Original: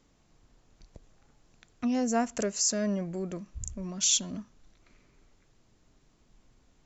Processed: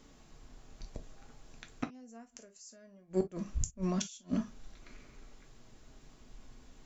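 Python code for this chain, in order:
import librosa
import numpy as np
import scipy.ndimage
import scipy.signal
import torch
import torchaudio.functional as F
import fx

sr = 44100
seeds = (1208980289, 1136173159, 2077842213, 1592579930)

y = fx.gate_flip(x, sr, shuts_db=-26.0, range_db=-33)
y = fx.rev_gated(y, sr, seeds[0], gate_ms=80, shape='falling', drr_db=5.0)
y = y * 10.0 ** (6.0 / 20.0)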